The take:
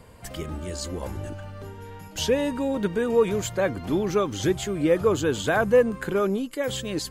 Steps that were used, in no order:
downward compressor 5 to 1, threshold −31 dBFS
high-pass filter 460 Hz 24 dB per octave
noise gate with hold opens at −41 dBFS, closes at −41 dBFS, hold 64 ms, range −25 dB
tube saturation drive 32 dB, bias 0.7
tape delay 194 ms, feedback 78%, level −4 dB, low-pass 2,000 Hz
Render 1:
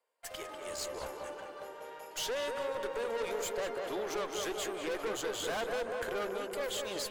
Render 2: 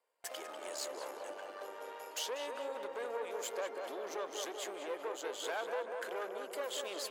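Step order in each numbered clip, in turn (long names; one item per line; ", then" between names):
high-pass filter, then noise gate with hold, then tube saturation, then tape delay, then downward compressor
downward compressor, then tube saturation, then tape delay, then high-pass filter, then noise gate with hold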